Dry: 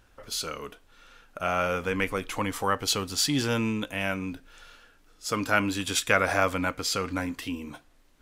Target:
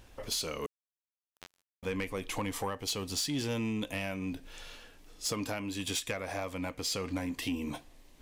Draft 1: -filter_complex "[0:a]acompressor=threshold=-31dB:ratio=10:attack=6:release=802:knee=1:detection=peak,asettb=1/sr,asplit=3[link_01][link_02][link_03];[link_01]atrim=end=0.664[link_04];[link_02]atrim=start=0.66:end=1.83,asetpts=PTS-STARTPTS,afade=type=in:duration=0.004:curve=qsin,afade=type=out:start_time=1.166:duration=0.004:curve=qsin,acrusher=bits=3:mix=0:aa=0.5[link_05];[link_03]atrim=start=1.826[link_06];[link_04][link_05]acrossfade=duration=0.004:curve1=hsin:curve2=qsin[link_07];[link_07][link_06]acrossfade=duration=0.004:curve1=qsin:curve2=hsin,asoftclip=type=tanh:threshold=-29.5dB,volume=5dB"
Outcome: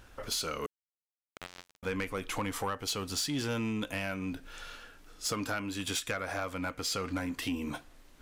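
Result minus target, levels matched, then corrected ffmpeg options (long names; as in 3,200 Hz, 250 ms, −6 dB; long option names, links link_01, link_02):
1,000 Hz band +2.5 dB
-filter_complex "[0:a]acompressor=threshold=-31dB:ratio=10:attack=6:release=802:knee=1:detection=peak,equalizer=frequency=1400:width=3.7:gain=-11,asettb=1/sr,asplit=3[link_01][link_02][link_03];[link_01]atrim=end=0.664[link_04];[link_02]atrim=start=0.66:end=1.83,asetpts=PTS-STARTPTS,afade=type=in:duration=0.004:curve=qsin,afade=type=out:start_time=1.166:duration=0.004:curve=qsin,acrusher=bits=3:mix=0:aa=0.5[link_05];[link_03]atrim=start=1.826[link_06];[link_04][link_05]acrossfade=duration=0.004:curve1=hsin:curve2=qsin[link_07];[link_07][link_06]acrossfade=duration=0.004:curve1=qsin:curve2=hsin,asoftclip=type=tanh:threshold=-29.5dB,volume=5dB"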